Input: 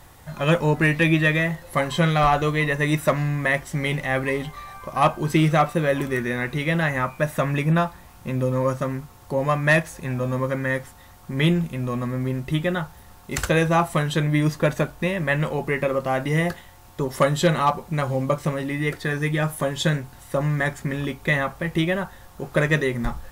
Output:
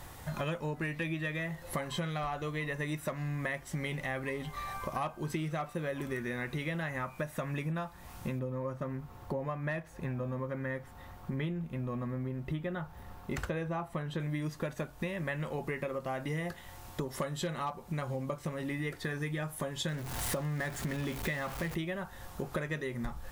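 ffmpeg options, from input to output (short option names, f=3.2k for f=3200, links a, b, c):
-filter_complex "[0:a]asettb=1/sr,asplit=3[a][b][c];[a]atrim=end=8.394[d];[b]atrim=start=8.39:end=14.2,asetpts=PTS-STARTPTS,afade=t=in:d=0.004:c=qsin,afade=t=out:st=5.806:d=0.004:c=qsin,equalizer=f=9k:w=0.34:g=-12.5[e];[c]atrim=start=14.196[f];[d][e]acrossfade=d=0.004:c1=hsin:c2=qsin[g];[g][f]acrossfade=d=0.004:c1=qsin:c2=hsin,asettb=1/sr,asplit=3[h][i][j];[h]atrim=end=19.884[k];[i]atrim=start=19.88:end=21.75,asetpts=PTS-STARTPTS,afade=t=in:d=0.004:c=qsin,afade=t=out:st=1.866:d=0.004:c=qsin,aeval=exprs='val(0)+0.5*0.0422*sgn(val(0))':c=same[l];[j]atrim=start=21.746[m];[k][l]acrossfade=d=0.004:c1=hsin:c2=qsin[n];[n][m]acrossfade=d=0.004:c1=qsin:c2=hsin,acompressor=threshold=-33dB:ratio=8"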